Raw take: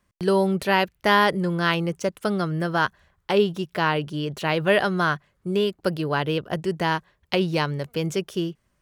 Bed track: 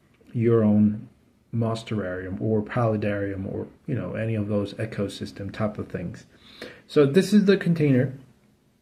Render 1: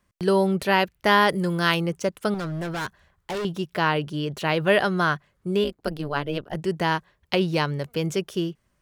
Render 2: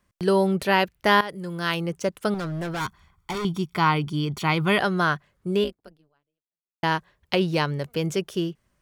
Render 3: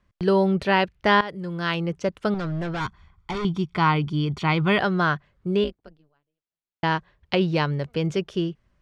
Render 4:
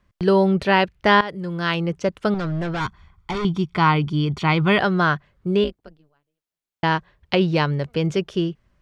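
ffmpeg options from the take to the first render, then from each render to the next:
ffmpeg -i in.wav -filter_complex "[0:a]asettb=1/sr,asplit=3[link_01][link_02][link_03];[link_01]atrim=end=1.294[link_04];[link_02]atrim=start=1.29:end=1.81,asetpts=PTS-STARTPTS,afade=type=in:duration=0.004:curve=qsin,afade=type=out:start_time=0.516:duration=0.004:curve=qsin,aemphasis=mode=production:type=cd[link_05];[link_03]atrim=start=1.806[link_06];[link_04][link_05]acrossfade=duration=0.004:curve1=hsin:curve2=qsin[link_07];[link_07][link_06]acrossfade=duration=0.004:curve1=qsin:curve2=hsin,asettb=1/sr,asplit=3[link_08][link_09][link_10];[link_08]atrim=end=2.344[link_11];[link_09]atrim=start=2.34:end=3.45,asetpts=PTS-STARTPTS,afade=type=in:duration=0.004:curve=qsin,afade=type=out:start_time=1.106:duration=0.004:curve=qsin,asoftclip=type=hard:threshold=-27dB[link_12];[link_10]atrim=start=3.446[link_13];[link_11][link_12]acrossfade=duration=0.004:curve1=hsin:curve2=qsin[link_14];[link_14][link_13]acrossfade=duration=0.004:curve1=qsin:curve2=hsin,asplit=3[link_15][link_16][link_17];[link_15]afade=type=out:start_time=5.63:duration=0.02[link_18];[link_16]tremolo=f=150:d=0.889,afade=type=in:start_time=5.63:duration=0.02,afade=type=out:start_time=6.55:duration=0.02[link_19];[link_17]afade=type=in:start_time=6.55:duration=0.02[link_20];[link_18][link_19][link_20]amix=inputs=3:normalize=0" out.wav
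ffmpeg -i in.wav -filter_complex "[0:a]asettb=1/sr,asplit=3[link_01][link_02][link_03];[link_01]atrim=end=2.804[link_04];[link_02]atrim=start=2.8:end=4.79,asetpts=PTS-STARTPTS,afade=type=in:duration=0.004:curve=qsin,afade=type=out:start_time=1.986:duration=0.004:curve=qsin,aecho=1:1:0.9:0.71,atrim=end_sample=87759[link_05];[link_03]atrim=start=4.786[link_06];[link_04][link_05]acrossfade=duration=0.004:curve1=hsin:curve2=qsin[link_07];[link_07][link_06]acrossfade=duration=0.004:curve1=qsin:curve2=hsin,asplit=3[link_08][link_09][link_10];[link_08]atrim=end=1.21,asetpts=PTS-STARTPTS,afade=type=out:start_time=1.206:duration=0.004:curve=hsin:silence=0.158489[link_11];[link_09]atrim=start=1.21:end=6.83,asetpts=PTS-STARTPTS,afade=type=in:duration=0.9:silence=0.158489,afade=type=out:start_time=4.43:duration=1.19:curve=exp[link_12];[link_10]atrim=start=6.83,asetpts=PTS-STARTPTS,afade=type=in:duration=0.004:curve=hsin[link_13];[link_11][link_12][link_13]concat=n=3:v=0:a=1" out.wav
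ffmpeg -i in.wav -af "lowpass=4500,lowshelf=frequency=97:gain=8.5" out.wav
ffmpeg -i in.wav -af "volume=3dB" out.wav

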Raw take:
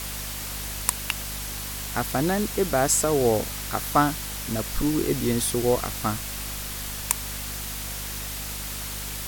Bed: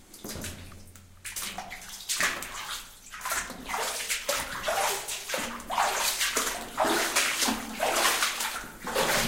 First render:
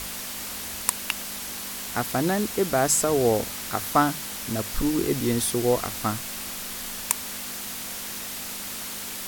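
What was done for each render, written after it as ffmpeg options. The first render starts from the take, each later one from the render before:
ffmpeg -i in.wav -af "bandreject=frequency=50:width_type=h:width=6,bandreject=frequency=100:width_type=h:width=6,bandreject=frequency=150:width_type=h:width=6" out.wav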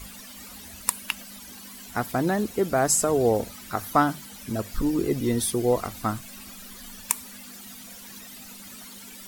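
ffmpeg -i in.wav -af "afftdn=noise_reduction=14:noise_floor=-35" out.wav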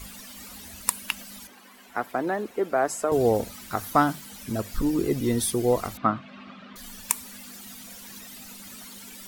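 ffmpeg -i in.wav -filter_complex "[0:a]asettb=1/sr,asplit=3[link_01][link_02][link_03];[link_01]atrim=end=1.474[link_04];[link_02]atrim=start=1.47:end=3.12,asetpts=PTS-STARTPTS,afade=type=in:duration=0.004:curve=qsin,afade=type=out:start_time=1.646:duration=0.004:curve=qsin,acrossover=split=280 2700:gain=0.126 1 0.224[link_05][link_06][link_07];[link_05][link_06][link_07]amix=inputs=3:normalize=0[link_08];[link_03]atrim=start=3.116[link_09];[link_04][link_08]acrossfade=duration=0.004:curve1=hsin:curve2=qsin[link_10];[link_10][link_09]acrossfade=duration=0.004:curve1=qsin:curve2=hsin,asettb=1/sr,asplit=3[link_11][link_12][link_13];[link_11]atrim=end=3.664[link_14];[link_12]atrim=start=3.66:end=4.26,asetpts=PTS-STARTPTS,afade=type=in:duration=0.004:curve=qsin,afade=type=out:start_time=0.596:duration=0.004:curve=qsin,aeval=exprs='val(0)*gte(abs(val(0)),0.0075)':channel_layout=same[link_15];[link_13]atrim=start=4.256[link_16];[link_14][link_15]acrossfade=duration=0.004:curve1=hsin:curve2=qsin[link_17];[link_17][link_16]acrossfade=duration=0.004:curve1=qsin:curve2=hsin,asettb=1/sr,asplit=3[link_18][link_19][link_20];[link_18]atrim=end=5.974[link_21];[link_19]atrim=start=5.97:end=6.76,asetpts=PTS-STARTPTS,afade=type=in:duration=0.004:curve=qsin,afade=type=out:start_time=0.786:duration=0.004:curve=qsin,highpass=140,equalizer=frequency=160:width_type=q:width=4:gain=10,equalizer=frequency=270:width_type=q:width=4:gain=5,equalizer=frequency=610:width_type=q:width=4:gain=6,equalizer=frequency=1200:width_type=q:width=4:gain=8,lowpass=frequency=3300:width=0.5412,lowpass=frequency=3300:width=1.3066[link_22];[link_20]atrim=start=6.756[link_23];[link_21][link_22]acrossfade=duration=0.004:curve1=hsin:curve2=qsin[link_24];[link_24][link_23]acrossfade=duration=0.004:curve1=qsin:curve2=hsin" out.wav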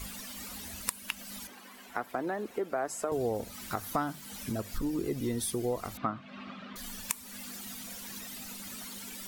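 ffmpeg -i in.wav -af "acompressor=threshold=-33dB:ratio=2.5" out.wav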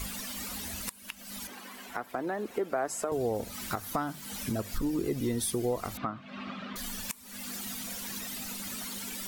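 ffmpeg -i in.wav -filter_complex "[0:a]asplit=2[link_01][link_02];[link_02]acompressor=threshold=-40dB:ratio=6,volume=-2dB[link_03];[link_01][link_03]amix=inputs=2:normalize=0,alimiter=limit=-18.5dB:level=0:latency=1:release=423" out.wav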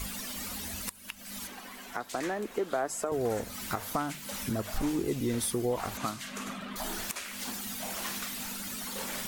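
ffmpeg -i in.wav -i bed.wav -filter_complex "[1:a]volume=-15dB[link_01];[0:a][link_01]amix=inputs=2:normalize=0" out.wav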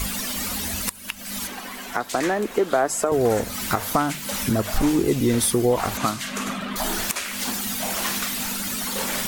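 ffmpeg -i in.wav -af "volume=10.5dB" out.wav

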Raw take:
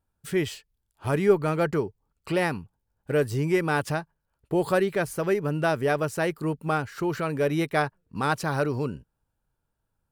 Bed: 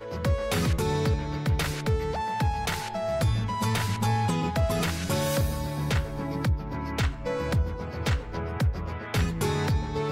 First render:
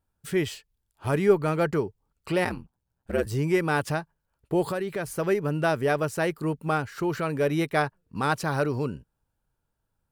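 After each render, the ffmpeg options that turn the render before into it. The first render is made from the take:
ffmpeg -i in.wav -filter_complex "[0:a]asplit=3[link_01][link_02][link_03];[link_01]afade=type=out:start_time=2.44:duration=0.02[link_04];[link_02]aeval=exprs='val(0)*sin(2*PI*64*n/s)':channel_layout=same,afade=type=in:start_time=2.44:duration=0.02,afade=type=out:start_time=3.25:duration=0.02[link_05];[link_03]afade=type=in:start_time=3.25:duration=0.02[link_06];[link_04][link_05][link_06]amix=inputs=3:normalize=0,asettb=1/sr,asplit=3[link_07][link_08][link_09];[link_07]atrim=end=4.644[link_10];[link_08]atrim=start=4.64:end=5.07,asetpts=PTS-STARTPTS,afade=type=in:duration=0.004:curve=qsin,afade=type=out:start_time=0.426:duration=0.004:curve=qsin,acompressor=threshold=-26dB:ratio=4:attack=3.2:release=140:knee=1:detection=peak[link_11];[link_09]atrim=start=5.066[link_12];[link_10][link_11]acrossfade=duration=0.004:curve1=hsin:curve2=qsin[link_13];[link_13][link_12]acrossfade=duration=0.004:curve1=qsin:curve2=hsin" out.wav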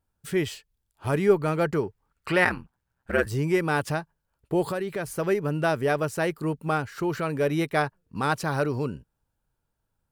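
ffmpeg -i in.wav -filter_complex "[0:a]asettb=1/sr,asplit=3[link_01][link_02][link_03];[link_01]atrim=end=1.834[link_04];[link_02]atrim=start=1.83:end=3.29,asetpts=PTS-STARTPTS,afade=type=in:duration=0.004:curve=qsin,afade=type=out:start_time=1.456:duration=0.004:curve=qsin,equalizer=frequency=1600:width_type=o:width=1.4:gain=10.5[link_05];[link_03]atrim=start=3.286[link_06];[link_04][link_05]acrossfade=duration=0.004:curve1=hsin:curve2=qsin[link_07];[link_07][link_06]acrossfade=duration=0.004:curve1=qsin:curve2=hsin" out.wav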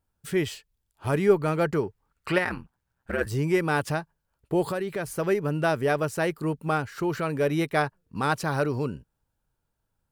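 ffmpeg -i in.wav -filter_complex "[0:a]asettb=1/sr,asplit=3[link_01][link_02][link_03];[link_01]atrim=end=2.384[link_04];[link_02]atrim=start=2.38:end=3.21,asetpts=PTS-STARTPTS,afade=type=in:duration=0.004:curve=qsin,afade=type=out:start_time=0.826:duration=0.004:curve=qsin,acompressor=threshold=-23dB:ratio=4:attack=3.2:release=140:knee=1:detection=peak[link_05];[link_03]atrim=start=3.206[link_06];[link_04][link_05]acrossfade=duration=0.004:curve1=hsin:curve2=qsin[link_07];[link_07][link_06]acrossfade=duration=0.004:curve1=qsin:curve2=hsin" out.wav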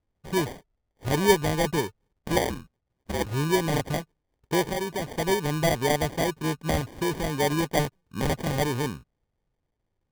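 ffmpeg -i in.wav -af "acrusher=samples=33:mix=1:aa=0.000001" out.wav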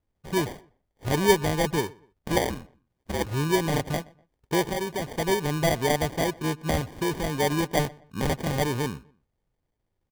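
ffmpeg -i in.wav -filter_complex "[0:a]asplit=2[link_01][link_02];[link_02]adelay=123,lowpass=frequency=2600:poles=1,volume=-23dB,asplit=2[link_03][link_04];[link_04]adelay=123,lowpass=frequency=2600:poles=1,volume=0.33[link_05];[link_01][link_03][link_05]amix=inputs=3:normalize=0" out.wav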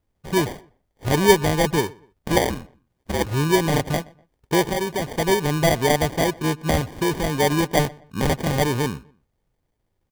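ffmpeg -i in.wav -af "volume=5dB" out.wav

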